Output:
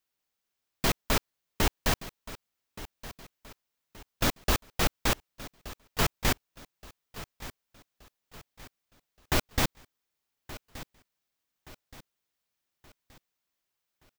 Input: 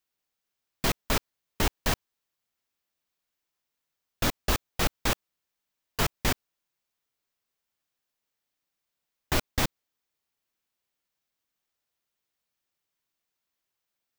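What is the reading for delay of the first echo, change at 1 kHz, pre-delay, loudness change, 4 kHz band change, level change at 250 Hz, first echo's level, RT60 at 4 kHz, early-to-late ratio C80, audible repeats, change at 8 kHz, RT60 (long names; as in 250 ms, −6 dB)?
1,174 ms, 0.0 dB, no reverb audible, −0.5 dB, 0.0 dB, 0.0 dB, −16.5 dB, no reverb audible, no reverb audible, 3, 0.0 dB, no reverb audible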